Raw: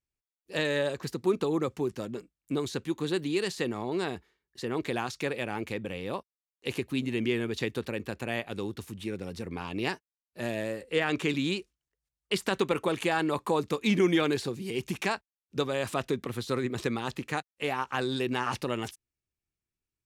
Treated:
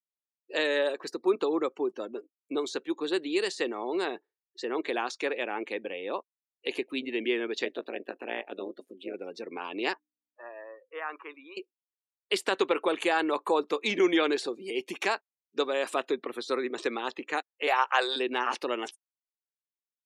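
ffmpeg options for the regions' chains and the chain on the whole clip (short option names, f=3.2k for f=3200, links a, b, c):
-filter_complex "[0:a]asettb=1/sr,asplit=3[a][b][c];[a]atrim=end=7.654[d];[b]atrim=start=7.65:end=9.14,asetpts=PTS-STARTPTS,afade=t=in:d=0.004:c=qsin,afade=t=out:st=1.486:d=0.004:c=qsin,lowshelf=f=270:g=4.5,tremolo=f=180:d=0.947[e];[c]atrim=start=9.136[f];[d][e]acrossfade=d=0.004:c1=hsin:c2=qsin[g];[g][f]acrossfade=d=0.004:c1=qsin:c2=hsin,asettb=1/sr,asplit=3[h][i][j];[h]atrim=end=9.934[k];[i]atrim=start=9.93:end=11.57,asetpts=PTS-STARTPTS,afade=t=in:d=0.004:c=qsin,afade=t=out:st=1.636:d=0.004:c=qsin,bandpass=f=1.1k:t=q:w=2.8,aeval=exprs='val(0)+0.001*(sin(2*PI*60*n/s)+sin(2*PI*2*60*n/s)/2+sin(2*PI*3*60*n/s)/3+sin(2*PI*4*60*n/s)/4+sin(2*PI*5*60*n/s)/5)':c=same[l];[j]atrim=start=11.566[m];[k][l]acrossfade=d=0.004:c1=hsin:c2=qsin[n];[n][m]acrossfade=d=0.004:c1=qsin:c2=hsin,asettb=1/sr,asplit=3[o][p][q];[o]atrim=end=17.674[r];[p]atrim=start=17.67:end=18.16,asetpts=PTS-STARTPTS,afade=t=in:d=0.004:c=qsin,afade=t=out:st=0.486:d=0.004:c=qsin,highpass=f=490:w=0.5412,highpass=f=490:w=1.3066,acontrast=33[s];[q]atrim=start=18.156[t];[r][s]acrossfade=d=0.004:c1=hsin:c2=qsin[u];[u][t]acrossfade=d=0.004:c1=qsin:c2=hsin,highpass=f=310:w=0.5412,highpass=f=310:w=1.3066,afftdn=nr=28:nf=-48,volume=2dB"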